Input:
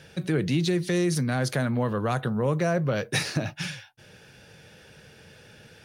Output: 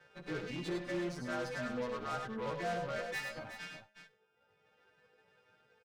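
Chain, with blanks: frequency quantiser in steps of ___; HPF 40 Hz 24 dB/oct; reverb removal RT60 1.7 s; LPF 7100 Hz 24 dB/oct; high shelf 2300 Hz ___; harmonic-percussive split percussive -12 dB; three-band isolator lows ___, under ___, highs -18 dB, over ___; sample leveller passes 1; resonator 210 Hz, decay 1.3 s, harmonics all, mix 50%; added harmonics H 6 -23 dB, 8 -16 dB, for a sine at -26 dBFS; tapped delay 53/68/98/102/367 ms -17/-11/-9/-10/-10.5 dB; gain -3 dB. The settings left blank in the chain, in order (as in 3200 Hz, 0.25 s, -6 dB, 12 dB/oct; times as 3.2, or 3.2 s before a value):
2 st, -5.5 dB, -14 dB, 280 Hz, 2000 Hz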